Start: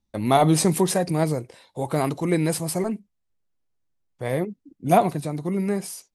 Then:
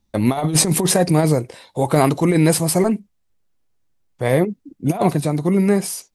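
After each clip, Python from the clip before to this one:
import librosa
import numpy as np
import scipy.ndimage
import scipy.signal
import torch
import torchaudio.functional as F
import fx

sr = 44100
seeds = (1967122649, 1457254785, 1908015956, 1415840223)

y = fx.over_compress(x, sr, threshold_db=-21.0, ratio=-0.5)
y = y * 10.0 ** (7.0 / 20.0)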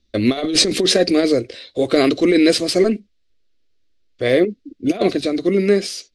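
y = fx.lowpass_res(x, sr, hz=4300.0, q=1.9)
y = fx.fixed_phaser(y, sr, hz=370.0, stages=4)
y = y * 10.0 ** (4.5 / 20.0)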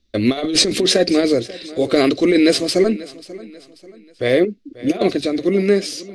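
y = fx.echo_feedback(x, sr, ms=538, feedback_pct=39, wet_db=-19.0)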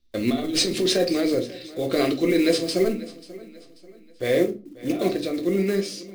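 y = fx.block_float(x, sr, bits=5)
y = fx.room_shoebox(y, sr, seeds[0], volume_m3=180.0, walls='furnished', distance_m=0.87)
y = y * 10.0 ** (-8.0 / 20.0)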